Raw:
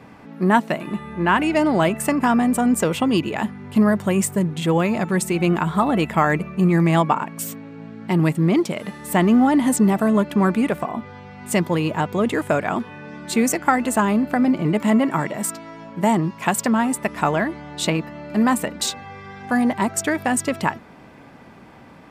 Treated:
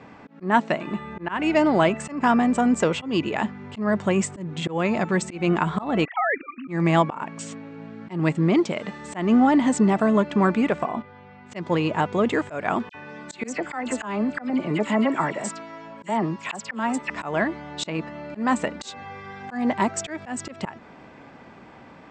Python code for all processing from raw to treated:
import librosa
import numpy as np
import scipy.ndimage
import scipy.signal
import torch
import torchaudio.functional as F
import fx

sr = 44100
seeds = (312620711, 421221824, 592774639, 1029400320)

y = fx.chain(x, sr, fx.sine_speech(),
    fx.highpass(hz=480.0, slope=12),
    fx.level_steps(step_db=11), at=(6.05, 6.68))
y = fx.chain(y, sr, fx.lowpass(hz=3600.0, slope=12),
    fx.level_steps(step_db=9), at=(11.02, 11.56))
y = fx.chain(y, sr, fx.low_shelf(hz=370.0, db=-4.0),
    fx.dispersion(late='lows', ms=56.0, hz=2300.0), at=(12.89, 17.1))
y = scipy.signal.sosfilt(scipy.signal.butter(16, 8100.0, 'lowpass', fs=sr, output='sos'), y)
y = fx.bass_treble(y, sr, bass_db=-4, treble_db=-4)
y = fx.auto_swell(y, sr, attack_ms=192.0)